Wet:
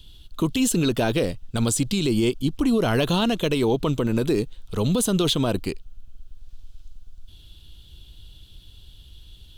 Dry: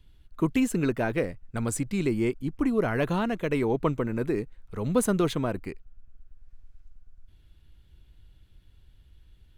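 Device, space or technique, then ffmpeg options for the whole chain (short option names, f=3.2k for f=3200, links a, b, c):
over-bright horn tweeter: -af "highshelf=f=2.6k:t=q:w=3:g=8,alimiter=limit=-21.5dB:level=0:latency=1:release=47,volume=8.5dB"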